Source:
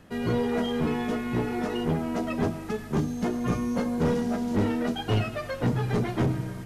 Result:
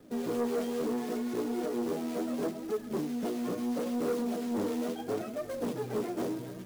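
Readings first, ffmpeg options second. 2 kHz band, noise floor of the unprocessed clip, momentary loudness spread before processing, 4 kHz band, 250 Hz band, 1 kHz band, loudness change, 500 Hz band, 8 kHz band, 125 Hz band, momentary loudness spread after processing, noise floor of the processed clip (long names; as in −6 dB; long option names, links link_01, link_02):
−11.0 dB, −38 dBFS, 3 LU, −9.0 dB, −5.5 dB, −7.0 dB, −6.0 dB, −3.0 dB, −1.0 dB, −18.0 dB, 4 LU, −42 dBFS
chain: -filter_complex "[0:a]equalizer=frequency=125:width_type=o:width=1:gain=5,equalizer=frequency=250:width_type=o:width=1:gain=10,equalizer=frequency=500:width_type=o:width=1:gain=6,equalizer=frequency=1000:width_type=o:width=1:gain=-4,equalizer=frequency=2000:width_type=o:width=1:gain=-6,equalizer=frequency=4000:width_type=o:width=1:gain=-9,equalizer=frequency=8000:width_type=o:width=1:gain=-7,acrossover=split=270|2100[link_01][link_02][link_03];[link_01]acompressor=threshold=-32dB:ratio=16[link_04];[link_04][link_02][link_03]amix=inputs=3:normalize=0,asuperstop=centerf=2800:order=4:qfactor=4.6,acrusher=bits=4:mode=log:mix=0:aa=0.000001,flanger=delay=2.2:depth=9.8:regen=34:speed=0.73:shape=triangular,asoftclip=type=tanh:threshold=-21.5dB,lowshelf=frequency=190:gain=-10.5,volume=-1.5dB"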